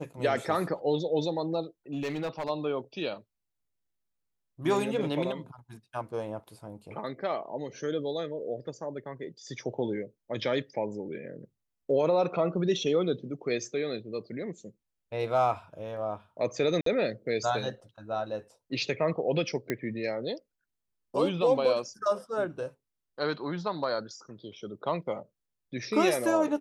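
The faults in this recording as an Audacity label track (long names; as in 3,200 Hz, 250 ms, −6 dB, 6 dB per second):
1.930000	2.500000	clipping −28 dBFS
16.810000	16.860000	drop-out 53 ms
19.700000	19.700000	click −16 dBFS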